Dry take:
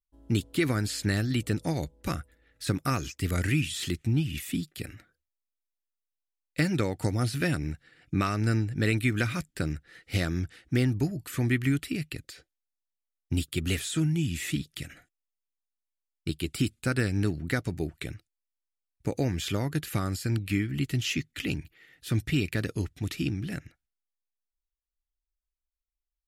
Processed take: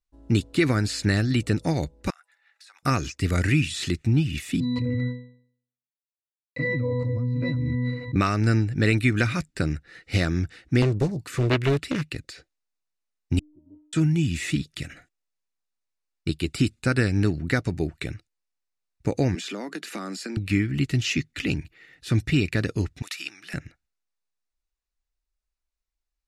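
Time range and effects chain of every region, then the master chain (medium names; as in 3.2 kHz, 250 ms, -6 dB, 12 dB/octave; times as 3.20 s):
2.10–2.83 s: Chebyshev high-pass 810 Hz, order 4 + compression 16:1, threshold -51 dBFS
4.60–8.16 s: CVSD coder 64 kbps + pitch-class resonator B, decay 0.56 s + level flattener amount 100%
10.82–12.15 s: high-pass 62 Hz + loudspeaker Doppler distortion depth 0.94 ms
13.39–13.93 s: elliptic low-pass 900 Hz, stop band 50 dB + inharmonic resonator 300 Hz, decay 0.84 s, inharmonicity 0.008
19.35–20.37 s: steep high-pass 190 Hz 72 dB/octave + peaking EQ 12 kHz -5 dB 0.22 oct + compression, threshold -34 dBFS
23.02–23.54 s: Chebyshev high-pass 1.2 kHz + treble shelf 8.6 kHz +9 dB
whole clip: low-pass 7.5 kHz 12 dB/octave; band-stop 3.2 kHz, Q 10; trim +5 dB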